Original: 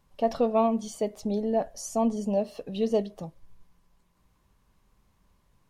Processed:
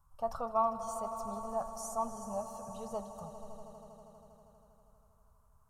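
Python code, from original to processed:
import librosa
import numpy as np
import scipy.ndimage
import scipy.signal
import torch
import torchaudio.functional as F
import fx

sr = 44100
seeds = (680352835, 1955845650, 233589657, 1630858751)

y = fx.curve_eq(x, sr, hz=(110.0, 320.0, 860.0, 1300.0, 1900.0, 3800.0, 8300.0), db=(0, -28, -3, 4, -21, -19, -2))
y = fx.echo_swell(y, sr, ms=80, loudest=5, wet_db=-15.5)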